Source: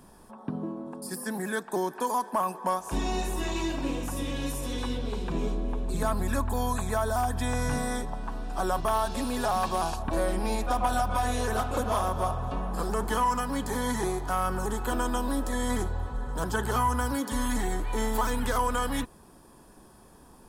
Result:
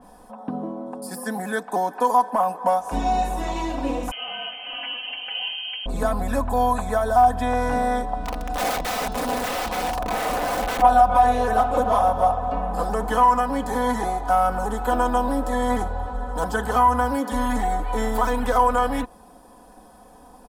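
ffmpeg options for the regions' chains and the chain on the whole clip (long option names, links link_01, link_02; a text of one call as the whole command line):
ffmpeg -i in.wav -filter_complex "[0:a]asettb=1/sr,asplit=3[link_01][link_02][link_03];[link_01]atrim=end=4.114[link_04];[link_02]atrim=start=4.11:end=5.86,asetpts=PTS-STARTPTS,afade=type=in:duration=0.004:curve=qsin,afade=type=out:start_time=1.746:duration=0.004:curve=qsin,bandreject=frequency=1000:width=7.1,lowpass=frequency=2700:width_type=q:width=0.5098,lowpass=frequency=2700:width_type=q:width=0.6013,lowpass=frequency=2700:width_type=q:width=0.9,lowpass=frequency=2700:width_type=q:width=2.563,afreqshift=-3200,asplit=2[link_05][link_06];[link_06]adelay=24,volume=-12.5dB[link_07];[link_05][link_07]amix=inputs=2:normalize=0,atrim=end_sample=77175[link_08];[link_03]atrim=start=5.856[link_09];[link_04][link_08]acrossfade=duration=0.004:curve1=hsin:curve2=qsin[link_10];[link_10][link_09]acrossfade=duration=0.004:curve1=qsin:curve2=hsin,asettb=1/sr,asplit=3[link_11][link_12][link_13];[link_11]atrim=end=8.164[link_14];[link_12]atrim=start=8.16:end=10.82,asetpts=PTS-STARTPTS,afade=type=in:duration=0.004:curve=qsin,afade=type=out:start_time=2.656:duration=0.004:curve=qsin,aeval=exprs='val(0)+0.0141*(sin(2*PI*60*n/s)+sin(2*PI*2*60*n/s)/2+sin(2*PI*3*60*n/s)/3+sin(2*PI*4*60*n/s)/4+sin(2*PI*5*60*n/s)/5)':channel_layout=same,aeval=exprs='(mod(16.8*val(0)+1,2)-1)/16.8':channel_layout=same[link_15];[link_13]atrim=start=10.816[link_16];[link_14][link_15]acrossfade=duration=0.004:curve1=hsin:curve2=qsin[link_17];[link_17][link_16]acrossfade=duration=0.004:curve1=qsin:curve2=hsin,equalizer=frequency=710:width_type=o:width=0.99:gain=10.5,aecho=1:1:4:0.66,adynamicequalizer=threshold=0.0126:dfrequency=3300:dqfactor=0.7:tfrequency=3300:tqfactor=0.7:attack=5:release=100:ratio=0.375:range=2.5:mode=cutabove:tftype=highshelf" out.wav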